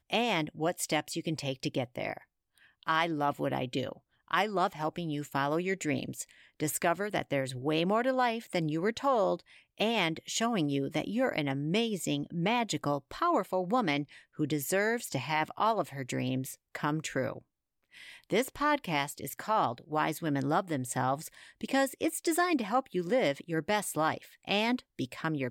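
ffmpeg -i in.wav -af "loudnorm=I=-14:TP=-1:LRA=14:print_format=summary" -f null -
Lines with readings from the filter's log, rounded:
Input Integrated:    -31.5 LUFS
Input True Peak:     -13.3 dBTP
Input LRA:             2.4 LU
Input Threshold:     -41.8 LUFS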